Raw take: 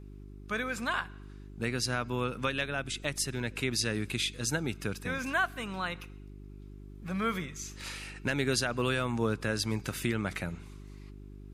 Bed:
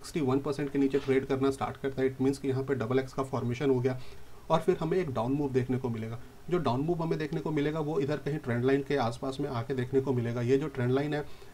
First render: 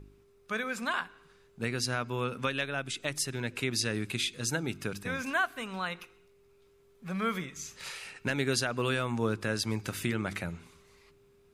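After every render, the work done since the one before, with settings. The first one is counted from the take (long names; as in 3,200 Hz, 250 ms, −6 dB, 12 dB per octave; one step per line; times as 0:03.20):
hum removal 50 Hz, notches 7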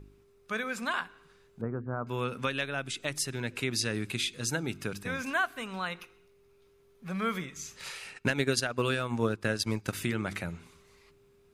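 0:01.61–0:02.07: Butterworth low-pass 1,300 Hz
0:05.98–0:07.09: notch filter 7,600 Hz
0:08.14–0:09.93: transient designer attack +5 dB, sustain −10 dB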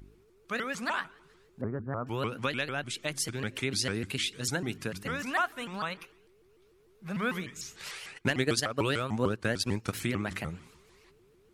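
pitch modulation by a square or saw wave saw up 6.7 Hz, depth 250 cents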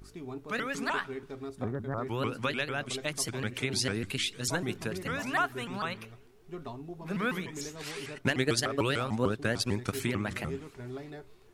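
mix in bed −13 dB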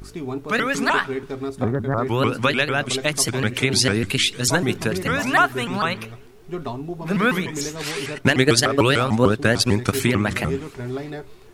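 level +12 dB
brickwall limiter −2 dBFS, peak gain reduction 1.5 dB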